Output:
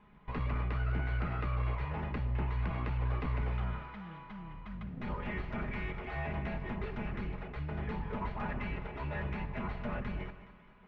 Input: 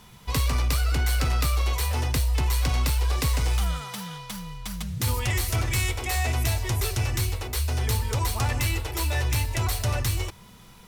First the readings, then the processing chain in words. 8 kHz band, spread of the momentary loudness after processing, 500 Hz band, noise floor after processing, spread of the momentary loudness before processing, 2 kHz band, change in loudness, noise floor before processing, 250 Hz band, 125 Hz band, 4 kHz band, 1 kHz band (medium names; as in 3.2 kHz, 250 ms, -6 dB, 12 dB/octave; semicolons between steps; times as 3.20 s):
under -40 dB, 10 LU, -7.0 dB, -57 dBFS, 8 LU, -10.0 dB, -11.5 dB, -49 dBFS, -3.5 dB, -11.5 dB, -23.5 dB, -8.5 dB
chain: comb filter that takes the minimum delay 4.8 ms; low-pass 2.2 kHz 24 dB/octave; on a send: two-band feedback delay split 680 Hz, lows 113 ms, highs 209 ms, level -13.5 dB; on the sum: trim -7.5 dB